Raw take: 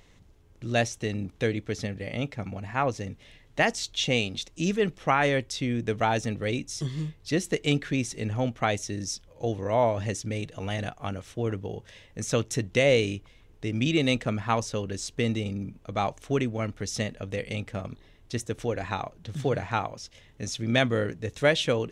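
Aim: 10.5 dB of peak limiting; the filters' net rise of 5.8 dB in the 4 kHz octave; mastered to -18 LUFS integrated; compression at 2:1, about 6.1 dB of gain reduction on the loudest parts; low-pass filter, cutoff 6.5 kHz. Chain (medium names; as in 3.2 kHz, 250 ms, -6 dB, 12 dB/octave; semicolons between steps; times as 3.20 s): low-pass 6.5 kHz; peaking EQ 4 kHz +8 dB; compression 2:1, threshold -27 dBFS; trim +16 dB; peak limiter -6.5 dBFS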